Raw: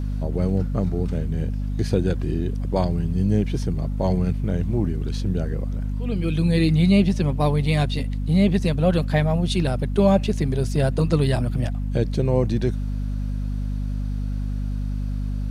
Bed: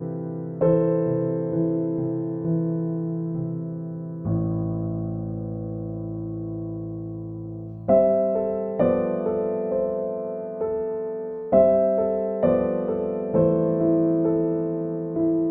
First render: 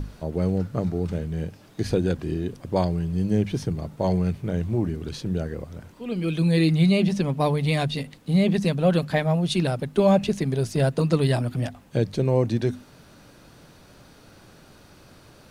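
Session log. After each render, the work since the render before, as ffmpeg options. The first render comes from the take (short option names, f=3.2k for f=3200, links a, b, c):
-af "bandreject=f=50:t=h:w=6,bandreject=f=100:t=h:w=6,bandreject=f=150:t=h:w=6,bandreject=f=200:t=h:w=6,bandreject=f=250:t=h:w=6"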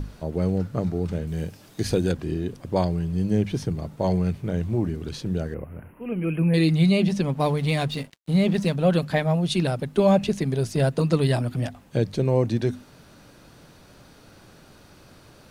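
-filter_complex "[0:a]asettb=1/sr,asplit=3[a][b][c];[a]atrim=end=1.274[d];[b]atrim=start=1.27:end=2.12,asetpts=PTS-STARTPTS,afade=t=in:d=0.004:c=qsin,afade=t=out:st=0.846:d=0.004:c=qsin,highshelf=f=4.3k:g=8.5[e];[c]atrim=start=2.116[f];[d][e]acrossfade=d=0.004:c1=hsin:c2=qsin[g];[g][f]acrossfade=d=0.004:c1=qsin:c2=hsin,asettb=1/sr,asplit=3[h][i][j];[h]atrim=end=5.544[k];[i]atrim=start=5.54:end=6.54,asetpts=PTS-STARTPTS,afade=t=in:d=0.004:c=qsin,afade=t=out:st=0.996:d=0.004:c=qsin,asuperstop=centerf=5500:order=20:qfactor=0.81[l];[j]atrim=start=6.536[m];[k][l]acrossfade=d=0.004:c1=hsin:c2=qsin[n];[n][m]acrossfade=d=0.004:c1=qsin:c2=hsin,asettb=1/sr,asplit=3[o][p][q];[o]atrim=end=7.344[r];[p]atrim=start=7.34:end=8.76,asetpts=PTS-STARTPTS,afade=t=in:d=0.004:c=qsin,afade=t=out:st=1.416:d=0.004:c=qsin,aeval=exprs='sgn(val(0))*max(abs(val(0))-0.00631,0)':c=same[s];[q]atrim=start=8.756[t];[r][s]acrossfade=d=0.004:c1=hsin:c2=qsin[u];[u][t]acrossfade=d=0.004:c1=qsin:c2=hsin"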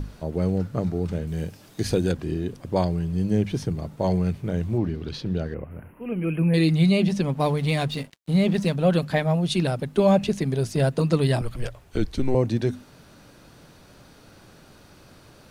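-filter_complex "[0:a]asettb=1/sr,asplit=3[a][b][c];[a]atrim=end=4.784[d];[b]atrim=start=4.78:end=5.71,asetpts=PTS-STARTPTS,afade=t=in:d=0.004:c=qsin,afade=t=out:st=0.926:d=0.004:c=qsin,highshelf=f=5.9k:t=q:w=1.5:g=-8.5[e];[c]atrim=start=5.706[f];[d][e]acrossfade=d=0.004:c1=hsin:c2=qsin[g];[g][f]acrossfade=d=0.004:c1=qsin:c2=hsin,asettb=1/sr,asplit=3[h][i][j];[h]atrim=end=11.414[k];[i]atrim=start=11.41:end=12.35,asetpts=PTS-STARTPTS,afade=t=in:d=0.004:c=qsin,afade=t=out:st=0.936:d=0.004:c=qsin,afreqshift=-130[l];[j]atrim=start=12.346[m];[k][l]acrossfade=d=0.004:c1=hsin:c2=qsin[n];[n][m]acrossfade=d=0.004:c1=qsin:c2=hsin"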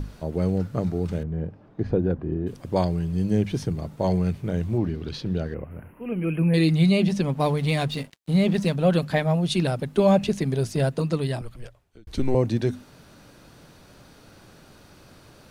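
-filter_complex "[0:a]asettb=1/sr,asplit=3[a][b][c];[a]atrim=end=1.234[d];[b]atrim=start=1.23:end=2.47,asetpts=PTS-STARTPTS,afade=t=in:d=0.004:c=qsin,afade=t=out:st=1.236:d=0.004:c=qsin,lowpass=1.1k[e];[c]atrim=start=2.466[f];[d][e]acrossfade=d=0.004:c1=hsin:c2=qsin[g];[g][f]acrossfade=d=0.004:c1=qsin:c2=hsin,asplit=2[h][i];[h]atrim=end=12.07,asetpts=PTS-STARTPTS,afade=t=out:st=10.61:d=1.46[j];[i]atrim=start=12.07,asetpts=PTS-STARTPTS,afade=t=in:d=0.004:c=hsin[k];[j][k]concat=n=2:v=0:a=1"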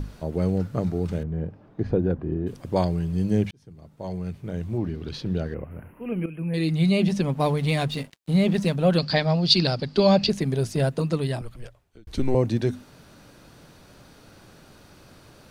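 -filter_complex "[0:a]asettb=1/sr,asplit=3[a][b][c];[a]atrim=end=8.984[d];[b]atrim=start=8.98:end=10.3,asetpts=PTS-STARTPTS,afade=t=in:d=0.004:c=qsin,afade=t=out:st=1.316:d=0.004:c=qsin,lowpass=f=4.7k:t=q:w=12[e];[c]atrim=start=10.296[f];[d][e]acrossfade=d=0.004:c1=hsin:c2=qsin[g];[g][f]acrossfade=d=0.004:c1=qsin:c2=hsin,asplit=3[h][i][j];[h]atrim=end=3.51,asetpts=PTS-STARTPTS,afade=t=out:st=3.506:d=0.004:c=hsin[k];[i]atrim=start=3.51:end=6.26,asetpts=PTS-STARTPTS,afade=t=in:d=1.8,afade=t=out:st=2.746:d=0.004:c=hsin:silence=0.211349[l];[j]atrim=start=6.26,asetpts=PTS-STARTPTS,afade=t=in:d=0.8:silence=0.211349[m];[k][l][m]concat=n=3:v=0:a=1"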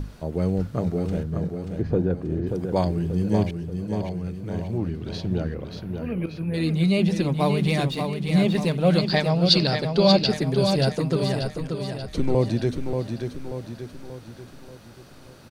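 -af "aecho=1:1:584|1168|1752|2336|2920|3504:0.501|0.246|0.12|0.059|0.0289|0.0142"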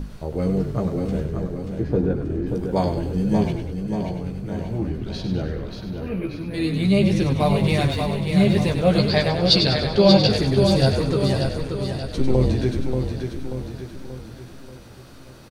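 -filter_complex "[0:a]asplit=2[a][b];[b]adelay=15,volume=-4dB[c];[a][c]amix=inputs=2:normalize=0,asplit=8[d][e][f][g][h][i][j][k];[e]adelay=98,afreqshift=-44,volume=-7.5dB[l];[f]adelay=196,afreqshift=-88,volume=-12.9dB[m];[g]adelay=294,afreqshift=-132,volume=-18.2dB[n];[h]adelay=392,afreqshift=-176,volume=-23.6dB[o];[i]adelay=490,afreqshift=-220,volume=-28.9dB[p];[j]adelay=588,afreqshift=-264,volume=-34.3dB[q];[k]adelay=686,afreqshift=-308,volume=-39.6dB[r];[d][l][m][n][o][p][q][r]amix=inputs=8:normalize=0"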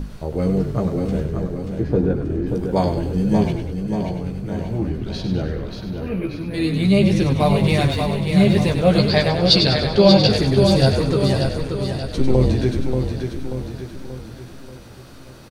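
-af "volume=2.5dB,alimiter=limit=-1dB:level=0:latency=1"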